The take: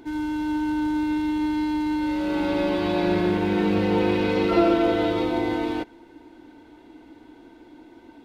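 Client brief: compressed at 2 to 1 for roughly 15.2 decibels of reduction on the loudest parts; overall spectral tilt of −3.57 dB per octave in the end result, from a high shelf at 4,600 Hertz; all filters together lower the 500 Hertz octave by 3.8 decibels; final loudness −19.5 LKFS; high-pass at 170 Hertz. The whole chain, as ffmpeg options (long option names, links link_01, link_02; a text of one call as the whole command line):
ffmpeg -i in.wav -af "highpass=170,equalizer=frequency=500:width_type=o:gain=-5.5,highshelf=frequency=4600:gain=9,acompressor=threshold=-46dB:ratio=2,volume=18.5dB" out.wav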